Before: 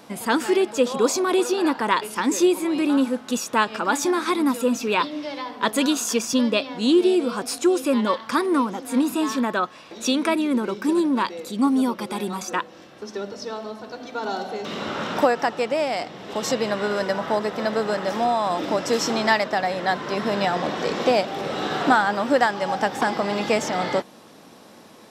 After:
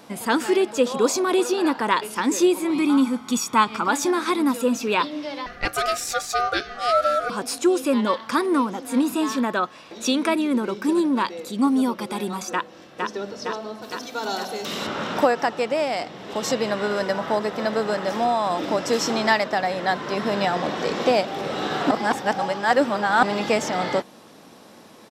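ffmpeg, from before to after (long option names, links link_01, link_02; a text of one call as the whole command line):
ffmpeg -i in.wav -filter_complex "[0:a]asettb=1/sr,asplit=3[link_01][link_02][link_03];[link_01]atrim=end=2.704[link_04];[link_02]atrim=start=2.7:end=3.88,asetpts=PTS-STARTPTS,afade=type=in:duration=0.004:curve=qsin,afade=type=out:start_time=1.176:duration=0.004:curve=qsin,aecho=1:1:0.9:0.65,atrim=end_sample=52038[link_05];[link_03]atrim=start=3.876[link_06];[link_04][link_05]acrossfade=duration=0.004:curve1=hsin:curve2=qsin[link_07];[link_07][link_06]acrossfade=duration=0.004:curve1=qsin:curve2=hsin,asettb=1/sr,asplit=3[link_08][link_09][link_10];[link_08]atrim=end=5.464[link_11];[link_09]atrim=start=5.46:end=7.3,asetpts=PTS-STARTPTS,afade=type=in:duration=0.004:curve=qsin,afade=type=out:start_time=1.836:duration=0.004:curve=qsin,aeval=exprs='val(0)*sin(2*PI*970*n/s)':channel_layout=same[link_12];[link_10]atrim=start=7.296[link_13];[link_11][link_12]acrossfade=duration=0.004:curve1=hsin:curve2=qsin[link_14];[link_14][link_13]acrossfade=duration=0.004:curve1=qsin:curve2=hsin,asplit=2[link_15][link_16];[link_16]afade=type=in:start_time=12.52:duration=0.01,afade=type=out:start_time=13.09:duration=0.01,aecho=0:1:460|920|1380|1840|2300|2760|3220|3680|4140|4600|5060:0.749894|0.487431|0.31683|0.20594|0.133861|0.0870095|0.0565562|0.0367615|0.023895|0.0155317|0.0100956[link_17];[link_15][link_17]amix=inputs=2:normalize=0,asettb=1/sr,asplit=3[link_18][link_19][link_20];[link_18]atrim=end=13.824[link_21];[link_19]atrim=start=13.82:end=14.87,asetpts=PTS-STARTPTS,afade=type=in:duration=0.004:curve=qsin,afade=type=out:start_time=1.046:duration=0.004:curve=qsin,aemphasis=mode=production:type=75fm[link_22];[link_20]atrim=start=14.866[link_23];[link_21][link_22]acrossfade=duration=0.004:curve1=hsin:curve2=qsin[link_24];[link_24][link_23]acrossfade=duration=0.004:curve1=qsin:curve2=hsin,asplit=3[link_25][link_26][link_27];[link_25]atrim=end=21.912[link_28];[link_26]atrim=start=21.908:end=23.232,asetpts=PTS-STARTPTS,areverse[link_29];[link_27]atrim=start=23.228[link_30];[link_28][link_29]acrossfade=duration=0.004:curve1=hsin:curve2=hsin[link_31];[link_31][link_30]acrossfade=duration=0.004:curve1=hsin:curve2=hsin" out.wav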